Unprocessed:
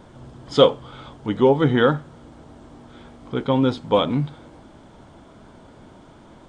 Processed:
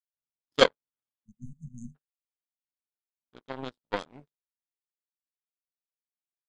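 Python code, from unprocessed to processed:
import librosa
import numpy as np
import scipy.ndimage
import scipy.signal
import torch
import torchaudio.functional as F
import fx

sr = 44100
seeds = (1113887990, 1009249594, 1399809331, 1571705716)

y = fx.power_curve(x, sr, exponent=3.0)
y = fx.peak_eq(y, sr, hz=78.0, db=-6.5, octaves=1.5)
y = fx.spec_repair(y, sr, seeds[0], start_s=1.16, length_s=0.77, low_hz=240.0, high_hz=6100.0, source='before')
y = y * librosa.db_to_amplitude(1.0)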